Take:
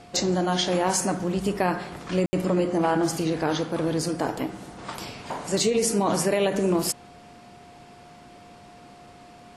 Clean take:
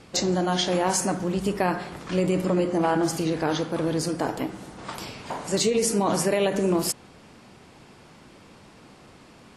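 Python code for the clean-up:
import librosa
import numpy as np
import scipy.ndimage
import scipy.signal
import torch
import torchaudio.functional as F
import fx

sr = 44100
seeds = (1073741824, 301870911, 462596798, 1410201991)

y = fx.notch(x, sr, hz=710.0, q=30.0)
y = fx.fix_ambience(y, sr, seeds[0], print_start_s=7.83, print_end_s=8.33, start_s=2.26, end_s=2.33)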